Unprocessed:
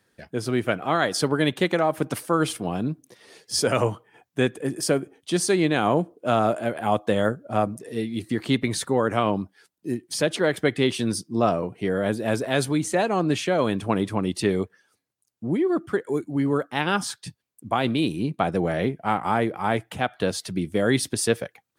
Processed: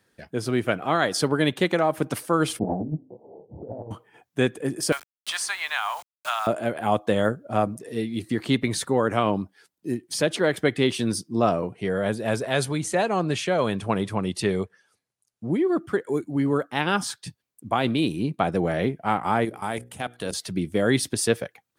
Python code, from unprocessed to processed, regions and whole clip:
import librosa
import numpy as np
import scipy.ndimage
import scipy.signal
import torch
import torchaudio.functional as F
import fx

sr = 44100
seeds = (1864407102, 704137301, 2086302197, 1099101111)

y = fx.chain(x, sr, fx.steep_lowpass(hz=870.0, slope=72),
    fx.doubler(ms=27.0, db=-2.5),
    fx.over_compress(threshold_db=-28.0, ratio=-0.5), at=(2.59, 3.91))
y = fx.chain(y, sr, fx.steep_highpass(hz=870.0, slope=36),
    fx.quant_dither(seeds[0], bits=8, dither='none'),
    fx.band_squash(depth_pct=70), at=(4.92, 6.47))
y = fx.chain(y, sr, fx.brickwall_lowpass(high_hz=12000.0),
    fx.peak_eq(hz=290.0, db=-6.5, octaves=0.47), at=(11.73, 15.5))
y = fx.chain(y, sr, fx.peak_eq(hz=9600.0, db=14.5, octaves=1.3),
    fx.level_steps(step_db=14),
    fx.hum_notches(base_hz=60, count=9), at=(19.45, 20.34))